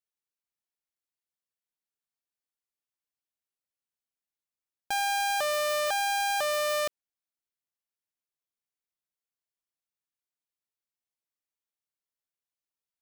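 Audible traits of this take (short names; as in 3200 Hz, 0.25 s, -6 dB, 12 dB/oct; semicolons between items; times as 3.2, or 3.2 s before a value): noise floor -94 dBFS; spectral tilt +0.5 dB/oct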